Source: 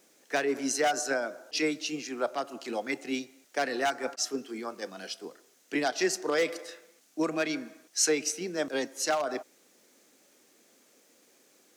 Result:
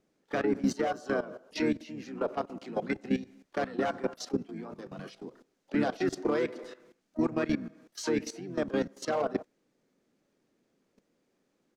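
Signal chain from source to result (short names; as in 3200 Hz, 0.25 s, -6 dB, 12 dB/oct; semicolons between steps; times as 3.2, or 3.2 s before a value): harmoniser -5 st -6 dB, -4 st -17 dB, +12 st -16 dB; level quantiser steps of 15 dB; RIAA curve playback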